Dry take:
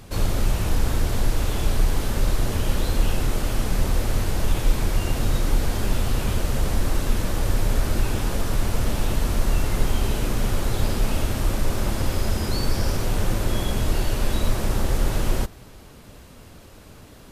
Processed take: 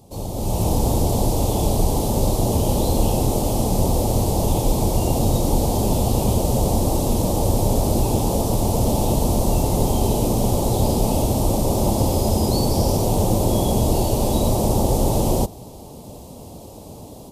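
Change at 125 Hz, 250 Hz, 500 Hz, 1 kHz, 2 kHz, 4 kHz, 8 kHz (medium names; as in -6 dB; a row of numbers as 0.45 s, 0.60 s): +5.0 dB, +8.5 dB, +9.5 dB, +8.5 dB, -10.5 dB, +1.5 dB, +7.0 dB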